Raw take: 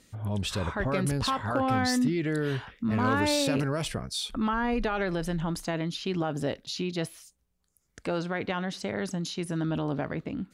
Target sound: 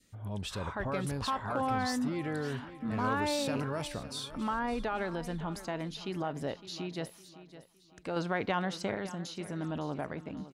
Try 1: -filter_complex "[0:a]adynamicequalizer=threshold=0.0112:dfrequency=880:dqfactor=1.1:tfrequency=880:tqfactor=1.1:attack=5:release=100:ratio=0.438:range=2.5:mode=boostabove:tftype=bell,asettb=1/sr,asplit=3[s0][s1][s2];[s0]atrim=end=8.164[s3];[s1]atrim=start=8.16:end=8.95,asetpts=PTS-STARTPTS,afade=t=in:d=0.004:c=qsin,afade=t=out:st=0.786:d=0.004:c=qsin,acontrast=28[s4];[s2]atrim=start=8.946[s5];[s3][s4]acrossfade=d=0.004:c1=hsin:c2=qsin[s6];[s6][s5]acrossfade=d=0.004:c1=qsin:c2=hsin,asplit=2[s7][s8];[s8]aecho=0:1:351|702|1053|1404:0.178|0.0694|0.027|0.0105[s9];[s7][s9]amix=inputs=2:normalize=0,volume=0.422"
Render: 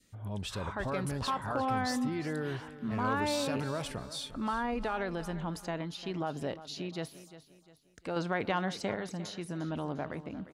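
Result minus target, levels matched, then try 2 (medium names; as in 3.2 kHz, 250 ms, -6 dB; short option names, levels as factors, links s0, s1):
echo 209 ms early
-filter_complex "[0:a]adynamicequalizer=threshold=0.0112:dfrequency=880:dqfactor=1.1:tfrequency=880:tqfactor=1.1:attack=5:release=100:ratio=0.438:range=2.5:mode=boostabove:tftype=bell,asettb=1/sr,asplit=3[s0][s1][s2];[s0]atrim=end=8.164[s3];[s1]atrim=start=8.16:end=8.95,asetpts=PTS-STARTPTS,afade=t=in:d=0.004:c=qsin,afade=t=out:st=0.786:d=0.004:c=qsin,acontrast=28[s4];[s2]atrim=start=8.946[s5];[s3][s4]acrossfade=d=0.004:c1=hsin:c2=qsin[s6];[s6][s5]acrossfade=d=0.004:c1=qsin:c2=hsin,asplit=2[s7][s8];[s8]aecho=0:1:560|1120|1680|2240:0.178|0.0694|0.027|0.0105[s9];[s7][s9]amix=inputs=2:normalize=0,volume=0.422"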